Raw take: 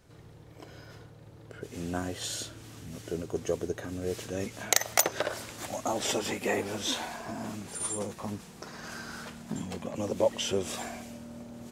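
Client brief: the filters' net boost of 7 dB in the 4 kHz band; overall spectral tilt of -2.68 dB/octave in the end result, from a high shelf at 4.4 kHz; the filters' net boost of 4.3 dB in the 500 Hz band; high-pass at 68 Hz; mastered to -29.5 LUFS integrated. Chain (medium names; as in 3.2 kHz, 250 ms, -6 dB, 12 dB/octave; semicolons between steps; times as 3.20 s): high-pass 68 Hz; peaking EQ 500 Hz +5 dB; peaking EQ 4 kHz +6.5 dB; treble shelf 4.4 kHz +4 dB; trim -1.5 dB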